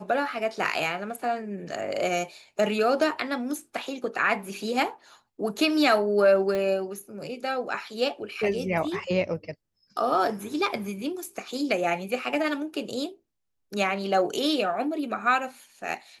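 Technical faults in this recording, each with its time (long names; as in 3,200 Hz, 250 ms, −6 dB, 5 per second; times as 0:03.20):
0:06.55: click −17 dBFS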